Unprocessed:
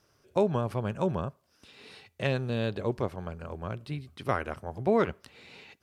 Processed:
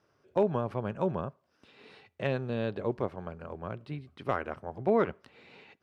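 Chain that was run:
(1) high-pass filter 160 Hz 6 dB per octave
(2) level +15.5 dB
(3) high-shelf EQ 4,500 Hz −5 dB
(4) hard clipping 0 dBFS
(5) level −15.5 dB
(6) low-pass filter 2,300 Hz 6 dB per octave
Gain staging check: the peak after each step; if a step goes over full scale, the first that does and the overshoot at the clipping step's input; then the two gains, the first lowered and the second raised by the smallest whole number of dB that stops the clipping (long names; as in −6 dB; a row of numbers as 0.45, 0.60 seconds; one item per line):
−12.5, +3.0, +3.0, 0.0, −15.5, −15.5 dBFS
step 2, 3.0 dB
step 2 +12.5 dB, step 5 −12.5 dB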